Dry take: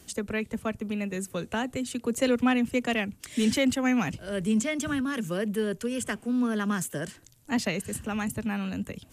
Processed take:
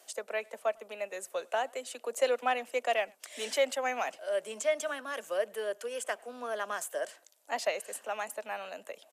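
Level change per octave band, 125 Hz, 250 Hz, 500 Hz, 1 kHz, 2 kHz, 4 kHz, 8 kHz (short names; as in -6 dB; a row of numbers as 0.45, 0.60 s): under -30 dB, -25.0 dB, 0.0 dB, +1.0 dB, -3.5 dB, -4.5 dB, -4.5 dB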